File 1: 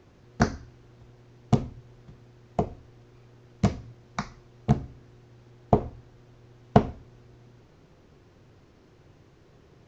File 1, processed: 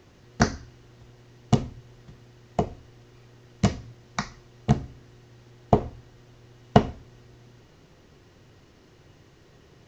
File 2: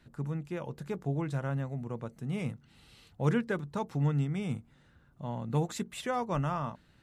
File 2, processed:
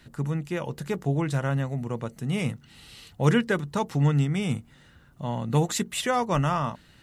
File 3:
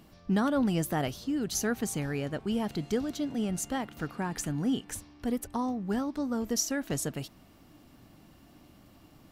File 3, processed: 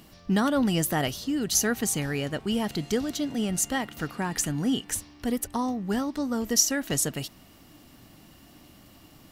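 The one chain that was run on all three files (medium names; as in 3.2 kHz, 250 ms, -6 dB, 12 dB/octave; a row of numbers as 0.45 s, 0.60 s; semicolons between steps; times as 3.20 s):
treble shelf 2.6 kHz +7 dB; small resonant body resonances 1.9/2.9 kHz, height 7 dB; normalise loudness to -27 LUFS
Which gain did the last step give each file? +1.0 dB, +6.5 dB, +2.5 dB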